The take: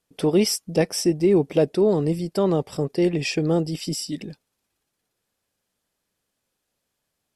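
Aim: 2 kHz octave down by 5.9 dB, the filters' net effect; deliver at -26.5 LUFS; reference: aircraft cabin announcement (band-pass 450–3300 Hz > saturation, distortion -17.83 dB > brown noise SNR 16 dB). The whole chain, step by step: band-pass 450–3300 Hz; peaking EQ 2 kHz -6.5 dB; saturation -16.5 dBFS; brown noise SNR 16 dB; trim +2.5 dB

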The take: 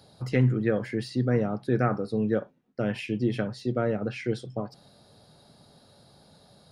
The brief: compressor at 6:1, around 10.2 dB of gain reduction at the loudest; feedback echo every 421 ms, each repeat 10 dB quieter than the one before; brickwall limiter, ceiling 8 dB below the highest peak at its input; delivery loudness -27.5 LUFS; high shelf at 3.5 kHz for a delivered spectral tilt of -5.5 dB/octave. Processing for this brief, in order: treble shelf 3.5 kHz +5.5 dB; compression 6:1, threshold -28 dBFS; peak limiter -25.5 dBFS; feedback delay 421 ms, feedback 32%, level -10 dB; trim +8.5 dB

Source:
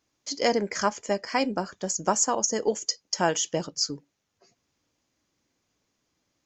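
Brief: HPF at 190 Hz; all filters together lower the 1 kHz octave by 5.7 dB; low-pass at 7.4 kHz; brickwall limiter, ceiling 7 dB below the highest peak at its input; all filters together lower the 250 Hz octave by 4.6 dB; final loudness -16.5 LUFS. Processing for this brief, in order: high-pass 190 Hz; low-pass 7.4 kHz; peaking EQ 250 Hz -3.5 dB; peaking EQ 1 kHz -7.5 dB; trim +15 dB; peak limiter -3 dBFS

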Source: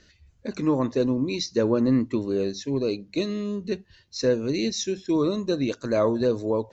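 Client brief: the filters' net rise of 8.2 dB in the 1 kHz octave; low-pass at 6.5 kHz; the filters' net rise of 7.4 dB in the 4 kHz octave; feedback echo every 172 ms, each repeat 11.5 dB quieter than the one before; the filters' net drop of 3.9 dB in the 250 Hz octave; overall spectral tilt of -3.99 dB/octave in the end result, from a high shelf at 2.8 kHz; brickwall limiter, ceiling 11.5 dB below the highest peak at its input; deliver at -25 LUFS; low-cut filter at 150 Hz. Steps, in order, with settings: high-pass 150 Hz; low-pass 6.5 kHz; peaking EQ 250 Hz -5 dB; peaking EQ 1 kHz +8.5 dB; treble shelf 2.8 kHz +6 dB; peaking EQ 4 kHz +4 dB; peak limiter -20 dBFS; feedback delay 172 ms, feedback 27%, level -11.5 dB; trim +5 dB

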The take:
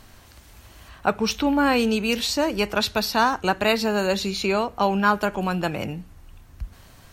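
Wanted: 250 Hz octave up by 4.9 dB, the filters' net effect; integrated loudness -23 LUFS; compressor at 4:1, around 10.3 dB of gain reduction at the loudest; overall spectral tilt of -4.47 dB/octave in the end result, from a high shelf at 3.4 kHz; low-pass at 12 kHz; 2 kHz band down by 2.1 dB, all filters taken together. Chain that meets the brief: low-pass 12 kHz; peaking EQ 250 Hz +6 dB; peaking EQ 2 kHz -4.5 dB; treble shelf 3.4 kHz +4 dB; compression 4:1, threshold -26 dBFS; trim +6 dB

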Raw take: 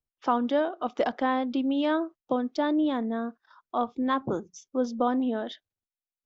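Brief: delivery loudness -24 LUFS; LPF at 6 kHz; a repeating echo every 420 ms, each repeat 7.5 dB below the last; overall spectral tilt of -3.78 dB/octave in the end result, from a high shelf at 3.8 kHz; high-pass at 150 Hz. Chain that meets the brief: high-pass 150 Hz; low-pass 6 kHz; treble shelf 3.8 kHz -5.5 dB; feedback delay 420 ms, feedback 42%, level -7.5 dB; trim +4 dB

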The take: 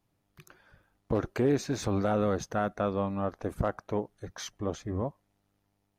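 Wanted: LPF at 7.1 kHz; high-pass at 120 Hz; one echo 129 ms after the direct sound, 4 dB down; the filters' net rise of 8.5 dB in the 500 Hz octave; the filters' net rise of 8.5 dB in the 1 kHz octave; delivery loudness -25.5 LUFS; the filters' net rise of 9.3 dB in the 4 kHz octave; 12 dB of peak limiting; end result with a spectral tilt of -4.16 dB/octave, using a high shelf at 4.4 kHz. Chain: high-pass 120 Hz; low-pass 7.1 kHz; peaking EQ 500 Hz +8 dB; peaking EQ 1 kHz +8 dB; peaking EQ 4 kHz +8.5 dB; treble shelf 4.4 kHz +5 dB; peak limiter -21 dBFS; delay 129 ms -4 dB; trim +5 dB

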